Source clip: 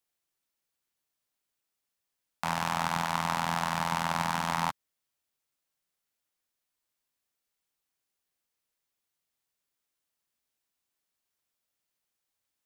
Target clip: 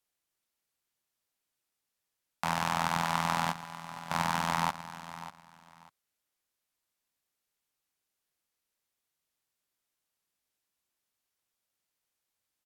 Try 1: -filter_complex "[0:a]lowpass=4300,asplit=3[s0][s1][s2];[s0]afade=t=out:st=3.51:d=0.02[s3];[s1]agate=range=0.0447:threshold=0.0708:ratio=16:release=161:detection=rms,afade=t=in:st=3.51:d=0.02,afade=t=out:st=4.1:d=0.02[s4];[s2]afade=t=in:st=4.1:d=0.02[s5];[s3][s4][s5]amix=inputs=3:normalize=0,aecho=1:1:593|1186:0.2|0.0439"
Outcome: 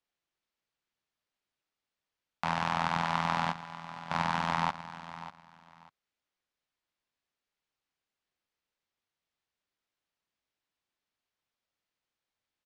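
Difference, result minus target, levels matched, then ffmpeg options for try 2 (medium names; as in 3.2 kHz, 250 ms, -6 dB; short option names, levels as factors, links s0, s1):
8 kHz band -9.5 dB
-filter_complex "[0:a]lowpass=17000,asplit=3[s0][s1][s2];[s0]afade=t=out:st=3.51:d=0.02[s3];[s1]agate=range=0.0447:threshold=0.0708:ratio=16:release=161:detection=rms,afade=t=in:st=3.51:d=0.02,afade=t=out:st=4.1:d=0.02[s4];[s2]afade=t=in:st=4.1:d=0.02[s5];[s3][s4][s5]amix=inputs=3:normalize=0,aecho=1:1:593|1186:0.2|0.0439"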